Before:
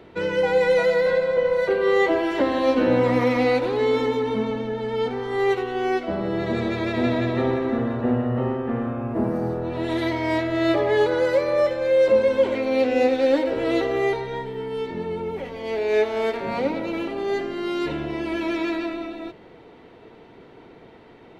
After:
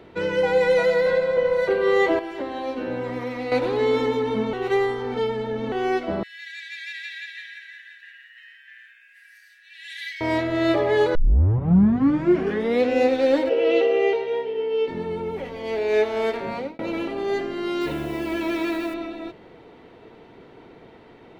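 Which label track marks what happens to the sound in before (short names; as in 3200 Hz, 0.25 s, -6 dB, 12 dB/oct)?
2.190000	3.520000	resonator 390 Hz, decay 0.32 s, mix 70%
4.530000	5.720000	reverse
6.230000	10.210000	Chebyshev high-pass 1600 Hz, order 8
11.150000	11.150000	tape start 1.75 s
13.490000	14.880000	speaker cabinet 390–5600 Hz, peaks and dips at 470 Hz +10 dB, 1100 Hz -9 dB, 1700 Hz -6 dB, 2800 Hz +10 dB, 3900 Hz -7 dB
16.280000	16.790000	fade out equal-power
17.810000	18.940000	requantised 8-bit, dither none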